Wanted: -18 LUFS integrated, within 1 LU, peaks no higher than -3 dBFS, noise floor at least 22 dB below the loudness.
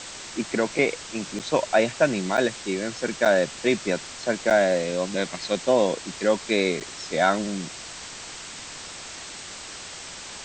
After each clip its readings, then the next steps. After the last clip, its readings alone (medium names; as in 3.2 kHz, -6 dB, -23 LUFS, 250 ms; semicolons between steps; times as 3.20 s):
dropouts 5; longest dropout 7.3 ms; noise floor -39 dBFS; noise floor target -47 dBFS; loudness -24.5 LUFS; peak level -7.5 dBFS; loudness target -18.0 LUFS
-> interpolate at 1.39/2.37/3.25/4.50/6.80 s, 7.3 ms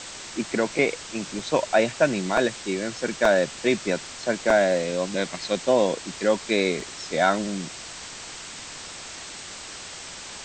dropouts 0; noise floor -39 dBFS; noise floor target -47 dBFS
-> noise reduction 8 dB, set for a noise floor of -39 dBFS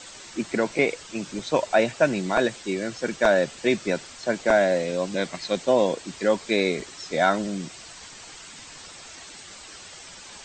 noise floor -44 dBFS; noise floor target -47 dBFS
-> noise reduction 6 dB, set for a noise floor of -44 dBFS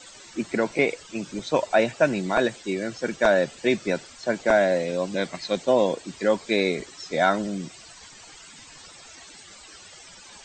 noise floor -47 dBFS; loudness -24.5 LUFS; peak level -6.5 dBFS; loudness target -18.0 LUFS
-> trim +6.5 dB; peak limiter -3 dBFS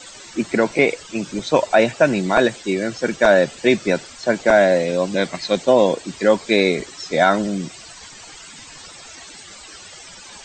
loudness -18.5 LUFS; peak level -3.0 dBFS; noise floor -41 dBFS